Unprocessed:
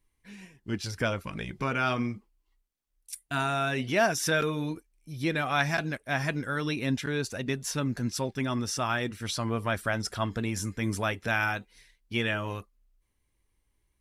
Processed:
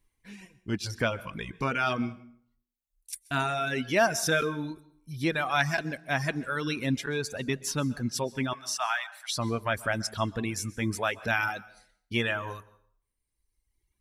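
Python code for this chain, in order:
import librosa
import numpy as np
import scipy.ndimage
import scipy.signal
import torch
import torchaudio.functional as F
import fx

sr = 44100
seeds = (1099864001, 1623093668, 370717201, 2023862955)

y = fx.dereverb_blind(x, sr, rt60_s=1.5)
y = fx.steep_highpass(y, sr, hz=650.0, slope=96, at=(8.53, 9.36))
y = fx.rev_plate(y, sr, seeds[0], rt60_s=0.58, hf_ratio=0.75, predelay_ms=115, drr_db=18.5)
y = F.gain(torch.from_numpy(y), 1.5).numpy()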